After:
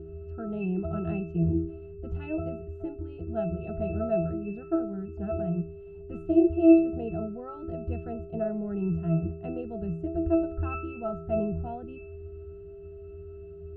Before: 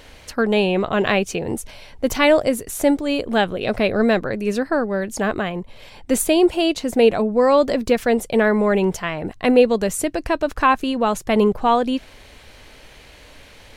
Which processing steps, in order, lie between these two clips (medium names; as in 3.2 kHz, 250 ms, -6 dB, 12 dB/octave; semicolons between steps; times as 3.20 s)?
whistle 400 Hz -24 dBFS; RIAA curve playback; pitch-class resonator E, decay 0.51 s; trim +4 dB